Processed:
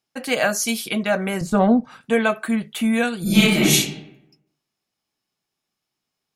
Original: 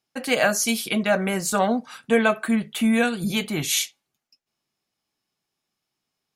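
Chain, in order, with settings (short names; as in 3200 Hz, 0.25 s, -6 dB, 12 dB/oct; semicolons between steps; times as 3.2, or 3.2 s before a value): 1.41–2.01 tilt -4 dB/oct; 3.22–3.72 reverb throw, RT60 0.85 s, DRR -10.5 dB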